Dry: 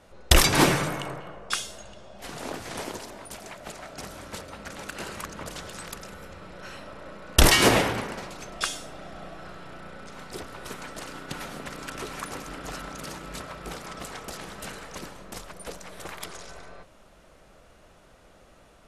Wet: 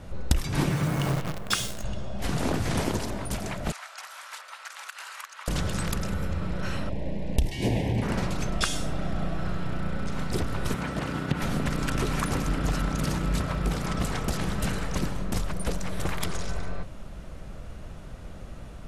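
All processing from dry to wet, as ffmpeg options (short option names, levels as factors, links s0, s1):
-filter_complex "[0:a]asettb=1/sr,asplit=3[s0][s1][s2];[s0]atrim=end=0.704[s3];[s1]atrim=start=0.7:end=1.84,asetpts=PTS-STARTPTS,afade=t=in:d=0.004:c=qsin,afade=t=out:st=1.136:d=0.004:c=qsin,highpass=73,acrusher=bits=7:dc=4:mix=0:aa=0.000001[s4];[s2]atrim=start=1.836[s5];[s3][s4]acrossfade=d=0.004:c1=hsin:c2=qsin[s6];[s6][s5]acrossfade=d=0.004:c1=qsin:c2=hsin,asettb=1/sr,asplit=3[s7][s8][s9];[s7]atrim=end=3.724[s10];[s8]atrim=start=3.72:end=5.48,asetpts=PTS-STARTPTS,afade=t=in:d=0.004:c=qsin,afade=t=out:st=1.756:d=0.004:c=qsin,highpass=f=970:w=0.5412,highpass=f=970:w=1.3066,acrossover=split=1900|3800[s11][s12][s13];[s11]acompressor=threshold=0.00447:ratio=4[s14];[s12]acompressor=threshold=0.00224:ratio=4[s15];[s13]acompressor=threshold=0.00282:ratio=4[s16];[s14][s15][s16]amix=inputs=3:normalize=0[s17];[s9]atrim=start=5.476[s18];[s10][s17]acrossfade=d=0.004:c1=hsin:c2=qsin[s19];[s19][s18]acrossfade=d=0.004:c1=qsin:c2=hsin,asettb=1/sr,asplit=3[s20][s21][s22];[s20]atrim=end=6.894[s23];[s21]atrim=start=6.89:end=8.02,asetpts=PTS-STARTPTS,afade=t=in:d=0.004:c=qsin,afade=t=out:st=1.126:d=0.004:c=qsin,asuperstop=centerf=1300:order=4:qfactor=1.2,highshelf=f=3800:g=-8[s24];[s22]atrim=start=8.016[s25];[s23][s24]acrossfade=d=0.004:c1=hsin:c2=qsin[s26];[s26][s25]acrossfade=d=0.004:c1=qsin:c2=hsin,asettb=1/sr,asplit=3[s27][s28][s29];[s27]atrim=end=10.744[s30];[s28]atrim=start=10.74:end=11.42,asetpts=PTS-STARTPTS,afade=t=in:d=0.004:c=qsin,afade=t=out:st=0.676:d=0.004:c=qsin,highpass=66,acrossover=split=3400[s31][s32];[s32]acompressor=threshold=0.00251:ratio=4:attack=1:release=60[s33];[s31][s33]amix=inputs=2:normalize=0[s34];[s29]atrim=start=11.416[s35];[s30][s34]acrossfade=d=0.004:c1=hsin:c2=qsin[s36];[s36][s35]acrossfade=d=0.004:c1=qsin:c2=hsin,bass=f=250:g=14,treble=f=4000:g=-1,acompressor=threshold=0.0501:ratio=16,volume=1.88"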